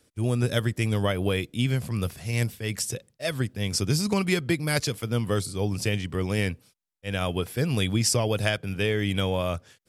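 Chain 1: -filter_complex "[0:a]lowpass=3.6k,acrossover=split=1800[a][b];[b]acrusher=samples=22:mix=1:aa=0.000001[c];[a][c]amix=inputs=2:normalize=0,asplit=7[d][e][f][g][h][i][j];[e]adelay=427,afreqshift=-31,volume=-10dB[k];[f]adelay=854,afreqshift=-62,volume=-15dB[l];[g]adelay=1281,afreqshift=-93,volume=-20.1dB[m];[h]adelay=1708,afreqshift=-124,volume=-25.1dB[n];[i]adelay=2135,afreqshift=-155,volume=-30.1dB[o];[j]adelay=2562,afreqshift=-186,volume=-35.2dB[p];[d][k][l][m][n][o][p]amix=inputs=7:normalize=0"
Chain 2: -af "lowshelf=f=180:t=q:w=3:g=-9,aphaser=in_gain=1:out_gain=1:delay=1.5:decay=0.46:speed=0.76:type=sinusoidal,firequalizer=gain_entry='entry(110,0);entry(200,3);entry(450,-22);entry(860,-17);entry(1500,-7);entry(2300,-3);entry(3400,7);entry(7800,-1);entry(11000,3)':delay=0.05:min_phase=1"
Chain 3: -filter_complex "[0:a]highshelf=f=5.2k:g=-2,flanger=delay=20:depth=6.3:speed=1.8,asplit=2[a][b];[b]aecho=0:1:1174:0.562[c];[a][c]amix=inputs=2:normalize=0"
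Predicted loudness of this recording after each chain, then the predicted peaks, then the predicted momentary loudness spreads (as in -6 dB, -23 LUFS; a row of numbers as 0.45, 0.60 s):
-27.5, -25.5, -29.0 LUFS; -10.5, -7.5, -12.5 dBFS; 6, 10, 5 LU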